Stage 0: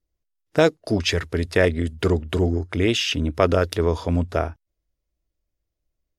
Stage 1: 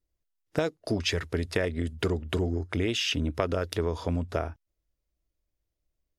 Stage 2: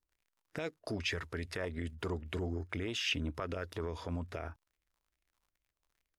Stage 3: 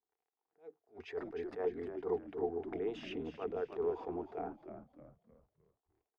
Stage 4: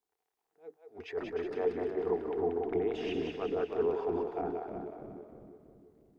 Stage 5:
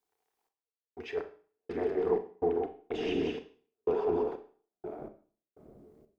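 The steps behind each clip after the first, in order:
compression, threshold -21 dBFS, peak gain reduction 10 dB; trim -2.5 dB
peak limiter -20 dBFS, peak gain reduction 11 dB; crackle 62 per s -55 dBFS; sweeping bell 2.4 Hz 940–2400 Hz +9 dB; trim -7.5 dB
two resonant band-passes 580 Hz, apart 0.74 oct; frequency-shifting echo 307 ms, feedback 41%, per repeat -72 Hz, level -9 dB; attacks held to a fixed rise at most 240 dB/s; trim +9.5 dB
two-band feedback delay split 430 Hz, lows 333 ms, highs 183 ms, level -4 dB; trim +4 dB
trance gate "xx..x..xx.x.xx.." 62 bpm -60 dB; Schroeder reverb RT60 0.43 s, combs from 29 ms, DRR 9 dB; trim +2.5 dB

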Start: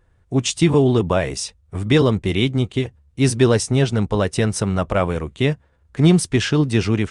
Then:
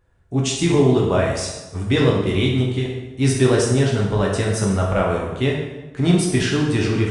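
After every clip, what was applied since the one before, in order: plate-style reverb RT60 1.1 s, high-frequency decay 0.75×, DRR -3 dB; trim -4.5 dB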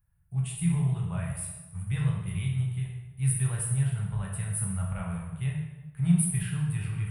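FFT filter 110 Hz 0 dB, 170 Hz +7 dB, 240 Hz -29 dB, 450 Hz -23 dB, 840 Hz -10 dB, 2.6 kHz -7 dB, 6.2 kHz -27 dB, 9.9 kHz +14 dB; trim -9 dB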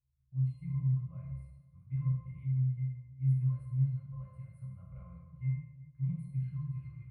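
pitch-class resonator C, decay 0.28 s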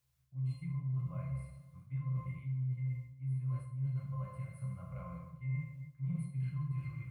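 high-pass 320 Hz 6 dB/octave; reverse; compression 12:1, threshold -46 dBFS, peak gain reduction 14 dB; reverse; trim +12.5 dB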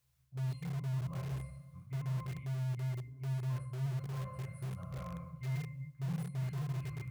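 spectral replace 2.72–3.29 s, 240–1700 Hz; in parallel at -10 dB: integer overflow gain 37.5 dB

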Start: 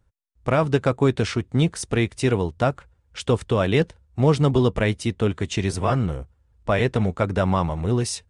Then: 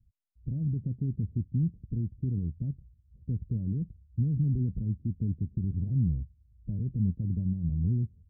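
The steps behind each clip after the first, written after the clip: peak limiter -17.5 dBFS, peak gain reduction 10 dB; inverse Chebyshev low-pass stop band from 1.3 kHz, stop band 80 dB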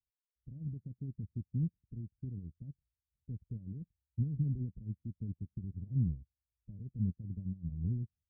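upward expansion 2.5:1, over -44 dBFS; trim -3 dB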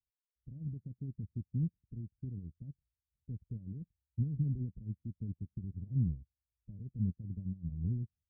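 no audible change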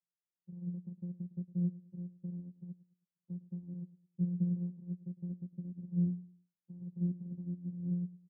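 vocoder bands 8, saw 176 Hz; feedback delay 107 ms, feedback 31%, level -18 dB; trim +1 dB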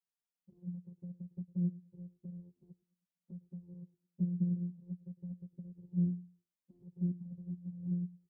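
touch-sensitive flanger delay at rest 4.3 ms, full sweep at -29 dBFS

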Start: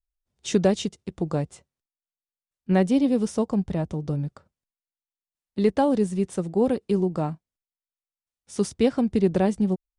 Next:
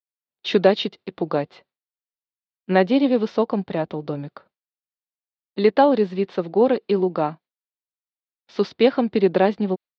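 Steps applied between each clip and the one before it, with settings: elliptic low-pass 4.3 kHz, stop band 60 dB; gate with hold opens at -55 dBFS; Bessel high-pass 390 Hz, order 2; trim +9 dB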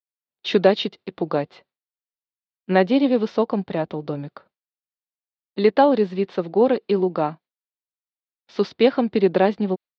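no audible change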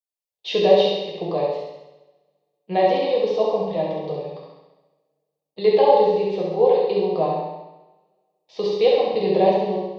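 static phaser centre 600 Hz, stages 4; flutter echo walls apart 11.5 m, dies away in 0.92 s; two-slope reverb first 0.71 s, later 2 s, from -24 dB, DRR -2.5 dB; trim -3 dB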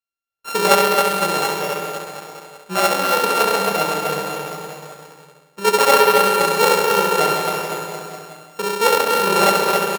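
sorted samples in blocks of 32 samples; bouncing-ball echo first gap 270 ms, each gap 0.9×, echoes 5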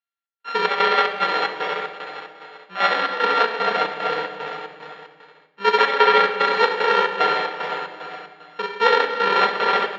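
square tremolo 2.5 Hz, depth 65%, duty 65%; cabinet simulation 310–3800 Hz, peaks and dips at 370 Hz -4 dB, 560 Hz -4 dB, 1.8 kHz +9 dB, 3.3 kHz +5 dB; simulated room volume 3400 m³, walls furnished, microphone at 1.8 m; trim -1.5 dB

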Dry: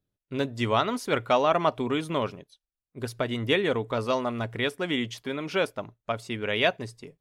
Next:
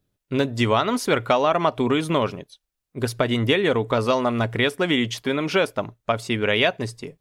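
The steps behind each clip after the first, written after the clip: compression 4:1, threshold -25 dBFS, peak gain reduction 7.5 dB; trim +9 dB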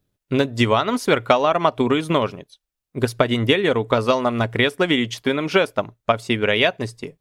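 transient shaper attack +4 dB, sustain -3 dB; trim +1 dB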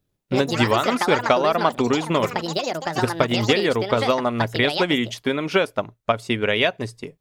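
ever faster or slower copies 93 ms, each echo +6 st, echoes 2, each echo -6 dB; trim -2 dB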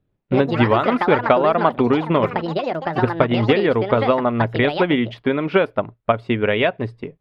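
distance through air 440 m; trim +4.5 dB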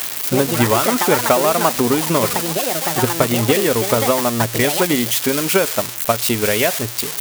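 zero-crossing glitches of -7.5 dBFS

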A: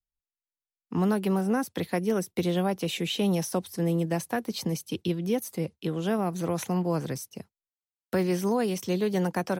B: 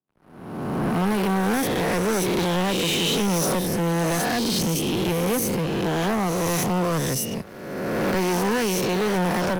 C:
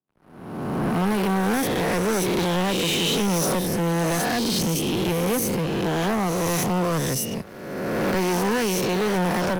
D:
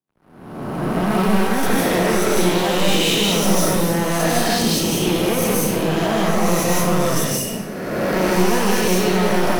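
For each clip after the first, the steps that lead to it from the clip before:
reverse spectral sustain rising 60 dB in 1.58 s; waveshaping leveller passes 5; three bands expanded up and down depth 40%; trim -8 dB
no audible change
algorithmic reverb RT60 0.74 s, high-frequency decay 1×, pre-delay 115 ms, DRR -4 dB

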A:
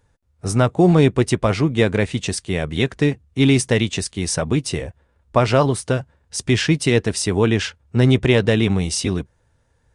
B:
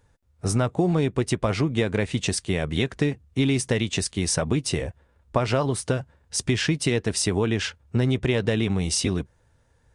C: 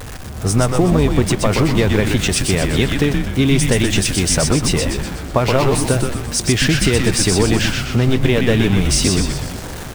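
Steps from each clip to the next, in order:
compression, threshold -19 dBFS, peak gain reduction 9.5 dB
jump at every zero crossing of -30.5 dBFS; whistle 760 Hz -53 dBFS; frequency-shifting echo 124 ms, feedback 54%, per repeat -120 Hz, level -3.5 dB; trim +5.5 dB

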